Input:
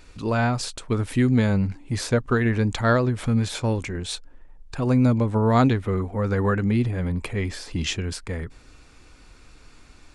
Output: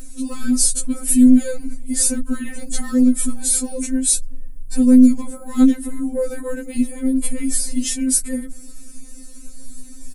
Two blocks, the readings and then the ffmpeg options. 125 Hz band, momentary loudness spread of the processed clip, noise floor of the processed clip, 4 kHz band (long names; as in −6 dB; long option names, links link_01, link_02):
below −15 dB, 16 LU, −35 dBFS, +1.5 dB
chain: -af "apsyclip=23.5dB,firequalizer=gain_entry='entry(110,0);entry(880,-24);entry(1800,-18);entry(3000,-19);entry(9600,11)':delay=0.05:min_phase=1,afftfilt=real='re*3.46*eq(mod(b,12),0)':imag='im*3.46*eq(mod(b,12),0)':win_size=2048:overlap=0.75,volume=-5.5dB"